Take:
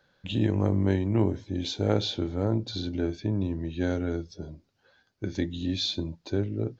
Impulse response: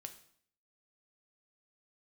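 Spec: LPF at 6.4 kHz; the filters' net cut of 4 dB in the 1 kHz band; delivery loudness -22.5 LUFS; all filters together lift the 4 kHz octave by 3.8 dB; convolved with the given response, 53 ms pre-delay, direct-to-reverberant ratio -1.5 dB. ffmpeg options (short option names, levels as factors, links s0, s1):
-filter_complex "[0:a]lowpass=6400,equalizer=f=1000:t=o:g=-6,equalizer=f=4000:t=o:g=5,asplit=2[s0][s1];[1:a]atrim=start_sample=2205,adelay=53[s2];[s1][s2]afir=irnorm=-1:irlink=0,volume=2.11[s3];[s0][s3]amix=inputs=2:normalize=0,volume=1.19"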